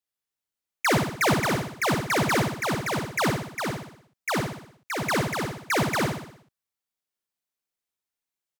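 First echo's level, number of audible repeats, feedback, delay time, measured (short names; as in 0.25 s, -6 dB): -4.0 dB, 6, 52%, 61 ms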